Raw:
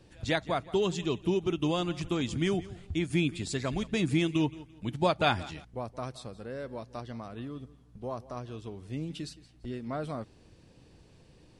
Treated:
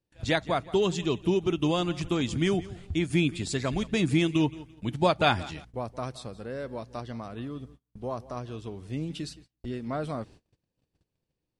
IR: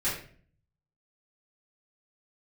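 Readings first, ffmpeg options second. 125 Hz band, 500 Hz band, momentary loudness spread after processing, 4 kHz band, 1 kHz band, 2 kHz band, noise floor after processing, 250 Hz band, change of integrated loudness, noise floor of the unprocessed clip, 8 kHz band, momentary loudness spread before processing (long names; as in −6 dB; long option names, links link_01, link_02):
+3.0 dB, +3.0 dB, 14 LU, +3.0 dB, +3.0 dB, +3.0 dB, −85 dBFS, +3.0 dB, +3.0 dB, −58 dBFS, +3.0 dB, 14 LU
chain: -af "agate=range=-30dB:threshold=-52dB:ratio=16:detection=peak,volume=3dB"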